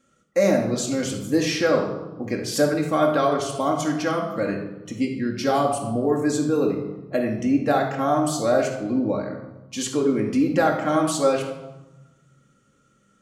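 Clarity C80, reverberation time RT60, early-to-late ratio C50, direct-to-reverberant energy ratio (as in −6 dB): 8.5 dB, 1.1 s, 5.5 dB, −0.5 dB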